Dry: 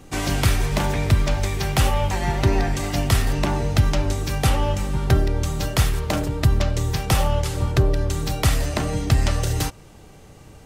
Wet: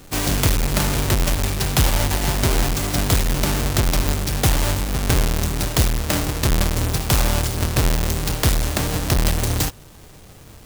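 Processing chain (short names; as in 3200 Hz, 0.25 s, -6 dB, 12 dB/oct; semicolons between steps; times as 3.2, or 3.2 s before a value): half-waves squared off; high shelf 3500 Hz +10.5 dB; maximiser -2.5 dB; gain -1.5 dB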